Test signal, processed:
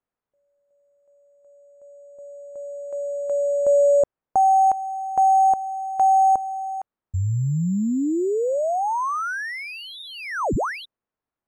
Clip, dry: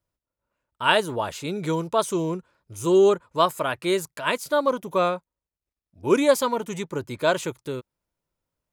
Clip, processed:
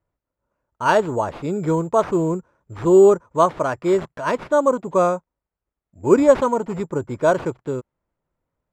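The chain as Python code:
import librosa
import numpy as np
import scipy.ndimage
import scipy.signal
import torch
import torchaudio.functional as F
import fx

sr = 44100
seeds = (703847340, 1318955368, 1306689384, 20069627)

y = (np.kron(x[::6], np.eye(6)[0]) * 6)[:len(x)]
y = scipy.signal.sosfilt(scipy.signal.butter(2, 1200.0, 'lowpass', fs=sr, output='sos'), y)
y = y * 10.0 ** (5.5 / 20.0)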